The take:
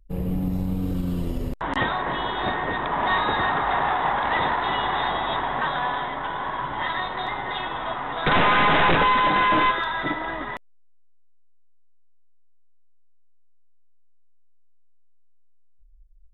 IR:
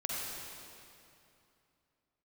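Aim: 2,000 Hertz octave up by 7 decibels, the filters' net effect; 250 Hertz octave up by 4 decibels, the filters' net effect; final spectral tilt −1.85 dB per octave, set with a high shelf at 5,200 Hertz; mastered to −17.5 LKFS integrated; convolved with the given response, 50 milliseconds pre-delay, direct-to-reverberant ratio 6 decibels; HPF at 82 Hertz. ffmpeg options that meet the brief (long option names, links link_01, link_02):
-filter_complex "[0:a]highpass=82,equalizer=frequency=250:width_type=o:gain=5.5,equalizer=frequency=2000:width_type=o:gain=7.5,highshelf=frequency=5200:gain=6.5,asplit=2[link_01][link_02];[1:a]atrim=start_sample=2205,adelay=50[link_03];[link_02][link_03]afir=irnorm=-1:irlink=0,volume=-10.5dB[link_04];[link_01][link_04]amix=inputs=2:normalize=0,volume=0.5dB"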